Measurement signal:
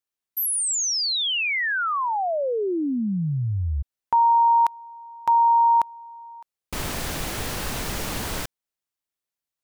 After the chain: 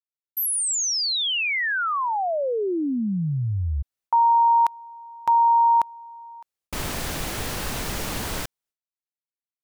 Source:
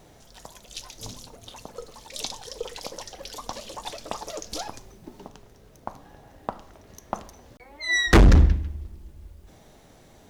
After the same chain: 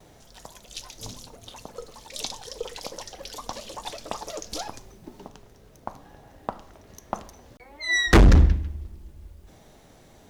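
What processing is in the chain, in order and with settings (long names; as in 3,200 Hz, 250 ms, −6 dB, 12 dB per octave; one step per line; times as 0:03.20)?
noise gate with hold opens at −46 dBFS, hold 208 ms, range −21 dB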